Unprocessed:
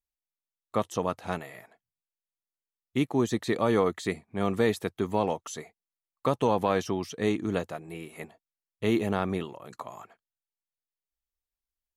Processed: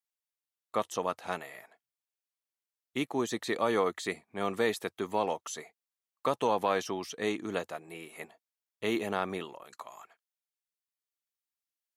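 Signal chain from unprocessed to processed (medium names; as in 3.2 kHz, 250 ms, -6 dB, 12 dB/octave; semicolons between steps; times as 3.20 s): high-pass 540 Hz 6 dB/octave, from 9.63 s 1.4 kHz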